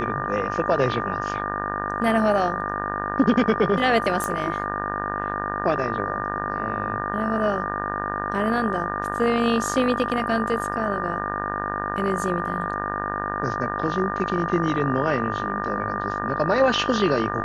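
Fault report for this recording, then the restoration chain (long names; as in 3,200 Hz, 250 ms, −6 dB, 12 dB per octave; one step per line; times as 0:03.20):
mains buzz 50 Hz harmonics 37 −30 dBFS
whistle 1,200 Hz −29 dBFS
0:04.24: click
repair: click removal
hum removal 50 Hz, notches 37
notch filter 1,200 Hz, Q 30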